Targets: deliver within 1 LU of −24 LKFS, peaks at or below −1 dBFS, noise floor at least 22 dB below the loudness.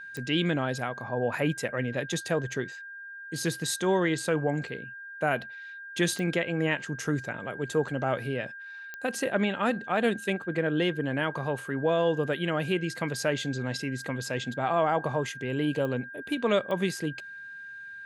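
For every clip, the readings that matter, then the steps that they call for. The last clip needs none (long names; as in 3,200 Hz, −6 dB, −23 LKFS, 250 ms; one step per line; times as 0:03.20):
number of clicks 5; interfering tone 1,600 Hz; level of the tone −40 dBFS; integrated loudness −29.5 LKFS; sample peak −12.5 dBFS; target loudness −24.0 LKFS
→ click removal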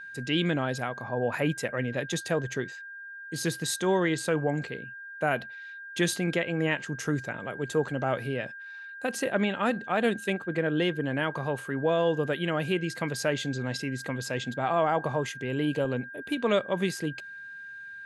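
number of clicks 0; interfering tone 1,600 Hz; level of the tone −40 dBFS
→ notch filter 1,600 Hz, Q 30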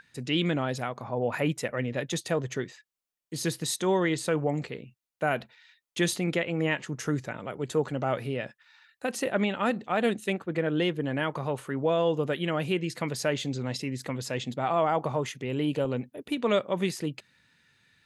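interfering tone none found; integrated loudness −29.5 LKFS; sample peak −12.5 dBFS; target loudness −24.0 LKFS
→ level +5.5 dB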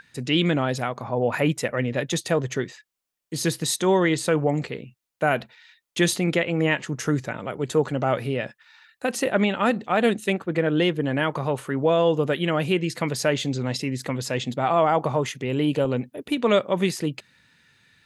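integrated loudness −24.0 LKFS; sample peak −7.0 dBFS; background noise floor −79 dBFS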